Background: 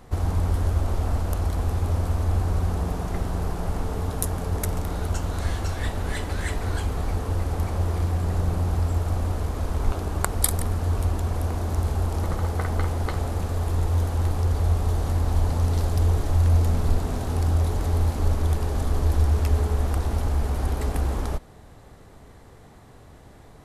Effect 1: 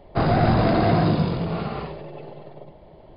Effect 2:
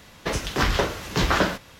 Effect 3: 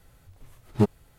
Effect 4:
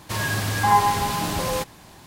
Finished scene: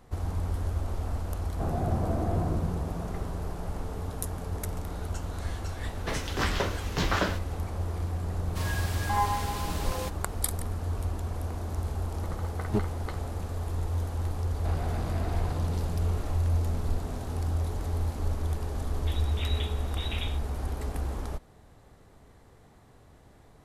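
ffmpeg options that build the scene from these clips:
-filter_complex "[1:a]asplit=2[a][b];[2:a]asplit=2[c][d];[0:a]volume=-7.5dB[e];[a]lowpass=1k[f];[b]asoftclip=type=tanh:threshold=-20.5dB[g];[d]lowpass=f=3.3k:t=q:w=0.5098,lowpass=f=3.3k:t=q:w=0.6013,lowpass=f=3.3k:t=q:w=0.9,lowpass=f=3.3k:t=q:w=2.563,afreqshift=-3900[h];[f]atrim=end=3.16,asetpts=PTS-STARTPTS,volume=-12dB,afade=t=in:d=0.004:c=hsin,afade=t=out:st=3.156:d=0.004:c=hsin,adelay=1440[i];[c]atrim=end=1.79,asetpts=PTS-STARTPTS,volume=-6.5dB,afade=t=in:d=0.004:c=hsin,afade=t=out:st=1.786:d=0.004:c=hsin,adelay=256221S[j];[4:a]atrim=end=2.06,asetpts=PTS-STARTPTS,volume=-10dB,afade=t=in:d=0.004:c=hsin,afade=t=out:st=2.056:d=0.004:c=hsin,adelay=8460[k];[3:a]atrim=end=1.18,asetpts=PTS-STARTPTS,volume=-7dB,afade=t=in:d=0.004:c=hsin,afade=t=out:st=1.176:d=0.004:c=hsin,adelay=11940[l];[g]atrim=end=3.16,asetpts=PTS-STARTPTS,volume=-13.5dB,afade=t=in:d=0.004:c=hsin,afade=t=out:st=3.156:d=0.004:c=hsin,adelay=14490[m];[h]atrim=end=1.79,asetpts=PTS-STARTPTS,volume=-18dB,afade=t=in:d=0.004:c=hsin,afade=t=out:st=1.786:d=0.004:c=hsin,adelay=18810[n];[e][i][j][k][l][m][n]amix=inputs=7:normalize=0"

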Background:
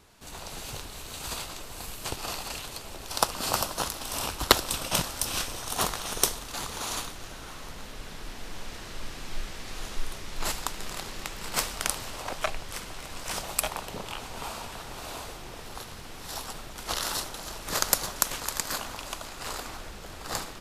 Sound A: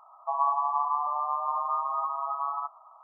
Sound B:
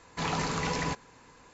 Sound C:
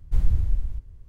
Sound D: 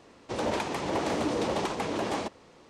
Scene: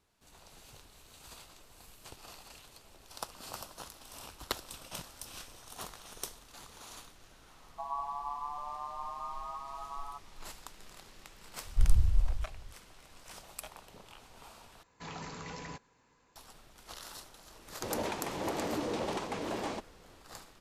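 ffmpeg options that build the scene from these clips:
-filter_complex "[0:a]volume=-16.5dB[a];[1:a]lowpass=1.2k[b];[3:a]lowshelf=f=130:g=5[c];[a]asplit=2[d][e];[d]atrim=end=14.834[f];[2:a]atrim=end=1.53,asetpts=PTS-STARTPTS,volume=-13dB[g];[e]atrim=start=16.356[h];[b]atrim=end=3.03,asetpts=PTS-STARTPTS,volume=-9.5dB,afade=t=in:d=0.004:c=hsin,afade=t=out:st=3.026:d=0.004:c=hsin,adelay=7510[i];[c]atrim=end=1.08,asetpts=PTS-STARTPTS,volume=-8dB,afade=t=in:d=0.004:c=hsin,afade=t=out:st=1.076:d=0.004:c=hsin,adelay=11650[j];[4:a]atrim=end=2.69,asetpts=PTS-STARTPTS,volume=-6dB,afade=t=in:d=0.004:c=hsin,afade=t=out:st=2.686:d=0.004:c=hsin,adelay=17520[k];[f][g]acrossfade=d=0.004:c1=hsin:c2=hsin[l];[l][h]acrossfade=d=0.004:c1=hsin:c2=hsin[m];[m][i][j][k]amix=inputs=4:normalize=0"

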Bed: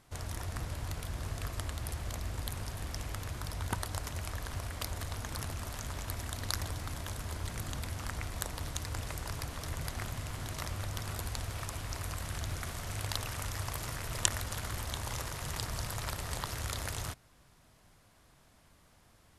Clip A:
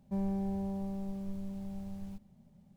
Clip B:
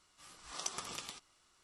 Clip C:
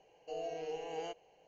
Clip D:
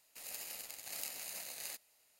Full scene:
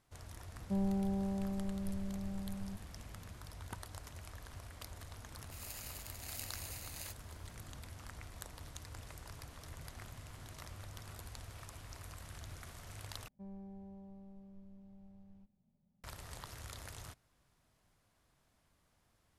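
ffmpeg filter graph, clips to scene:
-filter_complex "[1:a]asplit=2[a][b];[0:a]volume=-11.5dB[c];[a]lowpass=1.3k[d];[b]aemphasis=mode=reproduction:type=75fm[e];[c]asplit=2[f][g];[f]atrim=end=13.284[h];[e]atrim=end=2.76,asetpts=PTS-STARTPTS,volume=-17dB[i];[g]atrim=start=16.036[j];[d]atrim=end=2.76,asetpts=PTS-STARTPTS,volume=-0.5dB,afade=t=in:d=0.004:c=hsin,afade=t=out:st=2.756:d=0.004:c=hsin,adelay=590[k];[4:a]atrim=end=2.19,asetpts=PTS-STARTPTS,volume=-3dB,afade=t=in:d=0.004:c=hsin,afade=t=out:st=2.186:d=0.004:c=hsin,adelay=5360[l];[h][i]acrossfade=d=0.004:c1=hsin:c2=hsin[m];[m][j]acrossfade=d=0.004:c1=hsin:c2=hsin[n];[n][k][l]amix=inputs=3:normalize=0"

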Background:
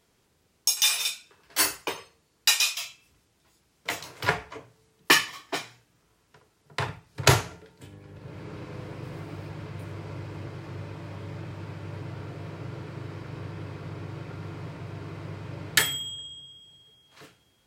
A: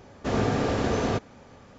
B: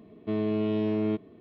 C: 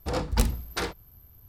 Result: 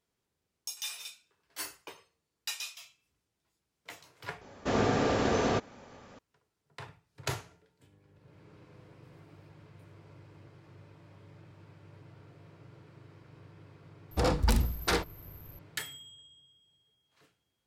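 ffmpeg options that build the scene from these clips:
-filter_complex "[0:a]volume=-16dB[a];[1:a]lowshelf=f=200:g=-6.5[b];[3:a]alimiter=level_in=16.5dB:limit=-1dB:release=50:level=0:latency=1[c];[a]asplit=2[d][e];[d]atrim=end=4.414[f];[b]atrim=end=1.78,asetpts=PTS-STARTPTS,volume=-0.5dB[g];[e]atrim=start=6.186[h];[c]atrim=end=1.48,asetpts=PTS-STARTPTS,volume=-14dB,afade=t=in:d=0.004:c=hsin,afade=t=out:st=1.476:d=0.004:c=hsin,adelay=14110[i];[f][g]acrossfade=d=0.004:c1=hsin:c2=hsin[j];[j][h]acrossfade=d=0.004:c1=hsin:c2=hsin[k];[k][i]amix=inputs=2:normalize=0"

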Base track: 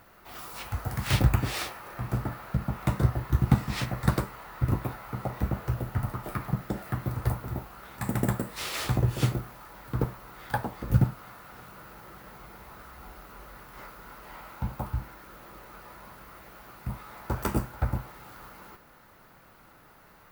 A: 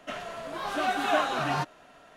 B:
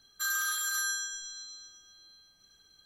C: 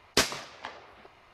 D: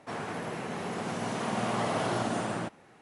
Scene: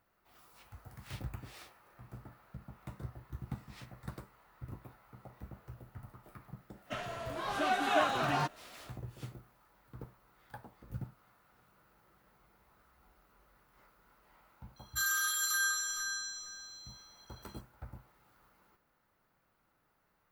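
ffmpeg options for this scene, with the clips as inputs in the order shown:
-filter_complex "[0:a]volume=-20dB[a];[2:a]asplit=2[b][c];[c]adelay=461,lowpass=f=3.7k:p=1,volume=-4dB,asplit=2[d][e];[e]adelay=461,lowpass=f=3.7k:p=1,volume=0.21,asplit=2[f][g];[g]adelay=461,lowpass=f=3.7k:p=1,volume=0.21[h];[b][d][f][h]amix=inputs=4:normalize=0[i];[1:a]atrim=end=2.16,asetpts=PTS-STARTPTS,volume=-3.5dB,afade=t=in:d=0.1,afade=t=out:st=2.06:d=0.1,adelay=6830[j];[i]atrim=end=2.85,asetpts=PTS-STARTPTS,volume=-1dB,afade=t=in:d=0.004:c=hsin,afade=t=out:st=2.846:d=0.004:c=hsin,adelay=650916S[k];[a][j][k]amix=inputs=3:normalize=0"

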